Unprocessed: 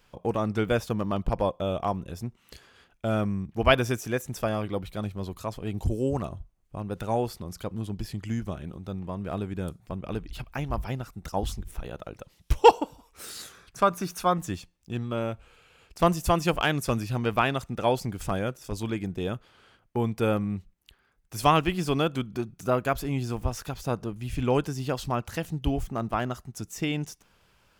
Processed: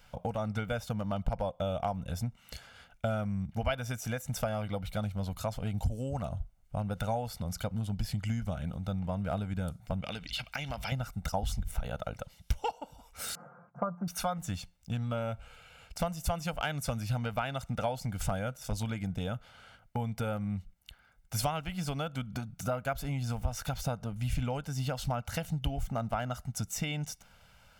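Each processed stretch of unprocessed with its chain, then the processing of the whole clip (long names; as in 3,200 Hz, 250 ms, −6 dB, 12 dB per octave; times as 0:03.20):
0:10.02–0:10.92: meter weighting curve D + downward compressor, threshold −35 dBFS
0:13.35–0:14.08: elliptic band-pass filter 140–1,100 Hz, stop band 50 dB + comb filter 5.7 ms, depth 73%
whole clip: downward compressor 12 to 1, threshold −31 dBFS; parametric band 360 Hz −13.5 dB 0.27 octaves; comb filter 1.4 ms, depth 51%; level +2 dB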